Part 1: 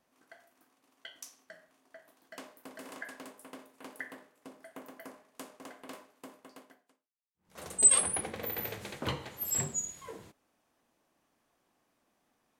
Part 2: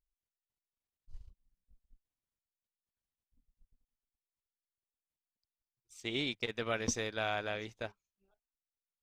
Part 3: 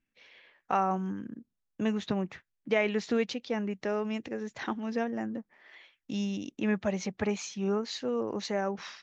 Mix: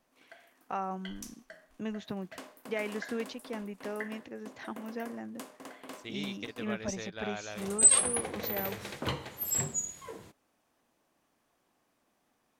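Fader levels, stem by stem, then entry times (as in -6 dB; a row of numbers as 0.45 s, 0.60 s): +1.0 dB, -5.0 dB, -7.5 dB; 0.00 s, 0.00 s, 0.00 s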